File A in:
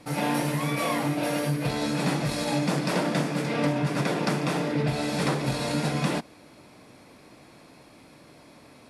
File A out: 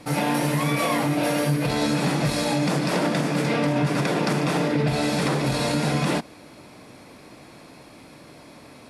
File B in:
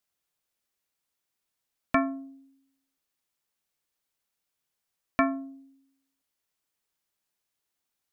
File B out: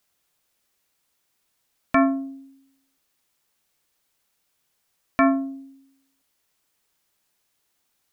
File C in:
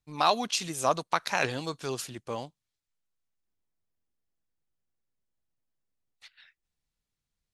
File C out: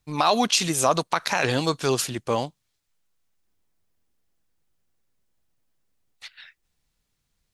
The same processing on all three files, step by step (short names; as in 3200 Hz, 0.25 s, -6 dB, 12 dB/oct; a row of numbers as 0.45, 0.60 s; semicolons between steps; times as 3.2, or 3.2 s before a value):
limiter -19 dBFS; match loudness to -23 LUFS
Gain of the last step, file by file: +5.5, +10.5, +11.0 dB